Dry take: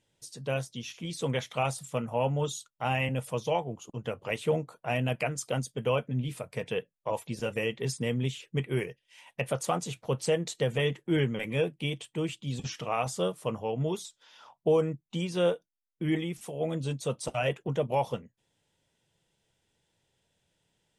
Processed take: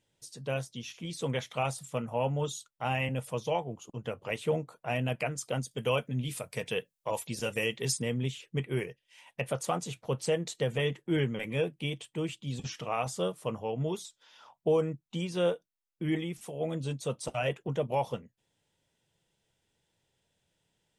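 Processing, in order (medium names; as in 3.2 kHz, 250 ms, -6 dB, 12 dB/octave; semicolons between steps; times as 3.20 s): 5.71–8.02 s: treble shelf 3 kHz +10.5 dB; trim -2 dB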